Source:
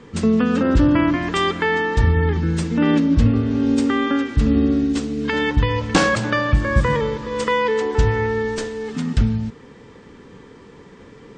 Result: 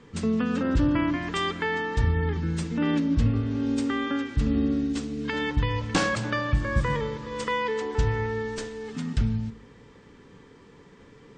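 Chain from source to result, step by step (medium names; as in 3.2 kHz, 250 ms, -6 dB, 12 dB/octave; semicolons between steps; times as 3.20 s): peaking EQ 470 Hz -2.5 dB 2.6 oct; on a send: reverberation RT60 0.65 s, pre-delay 7 ms, DRR 17.5 dB; on the sum: trim -6.5 dB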